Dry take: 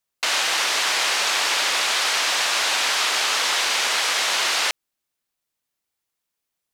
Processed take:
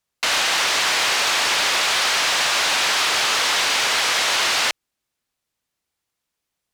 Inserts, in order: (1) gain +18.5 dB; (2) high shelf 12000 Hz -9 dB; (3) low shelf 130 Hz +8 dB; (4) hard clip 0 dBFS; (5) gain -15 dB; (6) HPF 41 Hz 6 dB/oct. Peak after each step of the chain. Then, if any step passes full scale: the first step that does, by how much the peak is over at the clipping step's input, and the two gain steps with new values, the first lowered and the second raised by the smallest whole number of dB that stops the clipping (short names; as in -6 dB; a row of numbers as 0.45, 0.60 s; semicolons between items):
+10.0, +10.0, +10.0, 0.0, -15.0, -14.5 dBFS; step 1, 10.0 dB; step 1 +8.5 dB, step 5 -5 dB